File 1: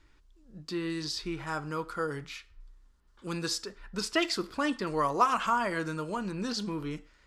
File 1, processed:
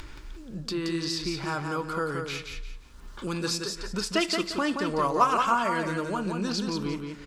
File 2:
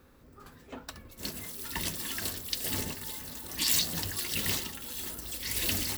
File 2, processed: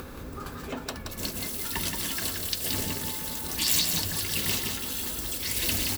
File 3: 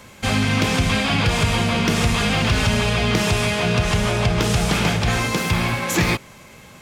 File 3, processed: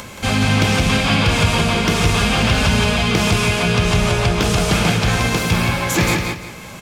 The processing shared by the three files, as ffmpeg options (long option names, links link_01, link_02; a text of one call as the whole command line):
ffmpeg -i in.wav -af "bandreject=frequency=1900:width=18,acompressor=mode=upward:threshold=-29dB:ratio=2.5,aecho=1:1:175|350|525|700:0.562|0.157|0.0441|0.0123,volume=2dB" out.wav